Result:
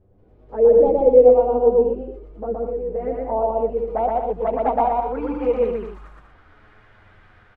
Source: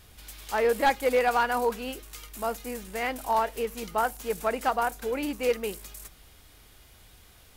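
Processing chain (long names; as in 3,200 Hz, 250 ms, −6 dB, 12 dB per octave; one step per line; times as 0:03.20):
0:03.95–0:05.06: phase distortion by the signal itself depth 0.21 ms
automatic gain control gain up to 4.5 dB
flanger swept by the level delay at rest 11.2 ms, full sweep at −19 dBFS
low-pass filter sweep 480 Hz → 1,600 Hz, 0:02.84–0:06.70
loudspeakers that aren't time-aligned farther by 41 metres −1 dB, 67 metres −7 dB, 82 metres −10 dB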